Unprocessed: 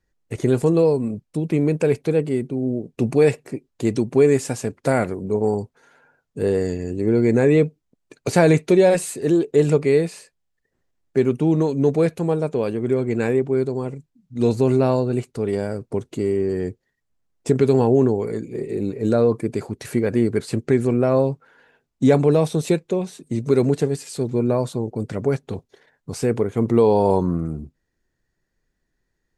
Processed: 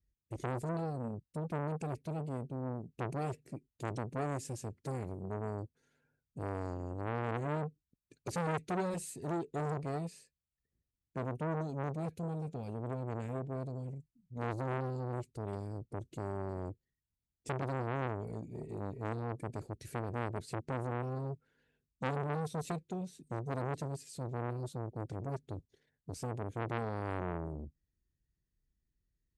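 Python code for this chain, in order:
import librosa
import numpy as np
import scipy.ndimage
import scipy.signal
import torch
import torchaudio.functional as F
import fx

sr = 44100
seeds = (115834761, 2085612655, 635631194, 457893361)

y = scipy.signal.sosfilt(scipy.signal.butter(2, 44.0, 'highpass', fs=sr, output='sos'), x)
y = fx.tone_stack(y, sr, knobs='10-0-1')
y = fx.transformer_sat(y, sr, knee_hz=1300.0)
y = F.gain(torch.from_numpy(y), 5.5).numpy()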